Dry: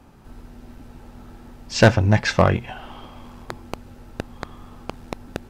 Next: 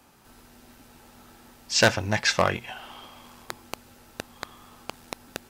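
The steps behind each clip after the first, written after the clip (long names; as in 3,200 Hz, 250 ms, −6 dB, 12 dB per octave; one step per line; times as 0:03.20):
spectral tilt +3 dB per octave
level −3.5 dB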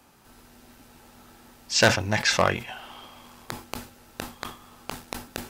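level that may fall only so fast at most 130 dB per second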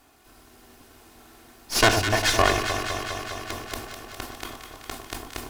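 lower of the sound and its delayed copy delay 2.8 ms
delay that swaps between a low-pass and a high-pass 102 ms, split 1,200 Hz, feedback 87%, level −6.5 dB
level +1 dB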